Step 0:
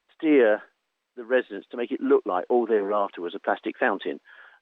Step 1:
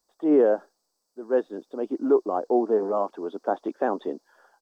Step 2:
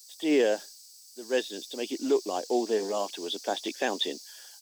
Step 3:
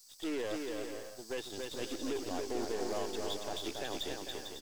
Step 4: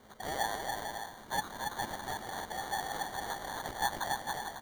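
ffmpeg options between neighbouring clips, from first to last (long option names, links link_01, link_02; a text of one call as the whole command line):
ffmpeg -i in.wav -af "firequalizer=gain_entry='entry(830,0);entry(2100,-21);entry(3100,-20);entry(4700,10)':delay=0.05:min_phase=1" out.wav
ffmpeg -i in.wav -af "aexciter=amount=13.8:drive=9:freq=2100,volume=-5dB" out.wav
ffmpeg -i in.wav -af "alimiter=limit=-22.5dB:level=0:latency=1:release=42,aeval=exprs='0.075*(cos(1*acos(clip(val(0)/0.075,-1,1)))-cos(1*PI/2))+0.0106*(cos(6*acos(clip(val(0)/0.075,-1,1)))-cos(6*PI/2))':channel_layout=same,aecho=1:1:280|448|548.8|609.3|645.6:0.631|0.398|0.251|0.158|0.1,volume=-7.5dB" out.wav
ffmpeg -i in.wav -af "highpass=frequency=1800:width_type=q:width=15,acrusher=samples=17:mix=1:aa=0.000001" out.wav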